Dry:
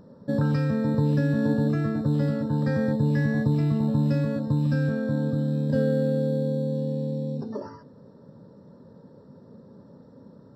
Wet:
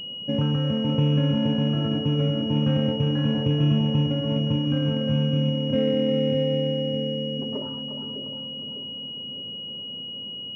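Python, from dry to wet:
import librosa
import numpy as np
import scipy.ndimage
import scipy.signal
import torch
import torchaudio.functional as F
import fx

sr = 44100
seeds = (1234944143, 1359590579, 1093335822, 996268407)

y = fx.echo_split(x, sr, split_hz=520.0, low_ms=603, high_ms=354, feedback_pct=52, wet_db=-6)
y = fx.pwm(y, sr, carrier_hz=2900.0)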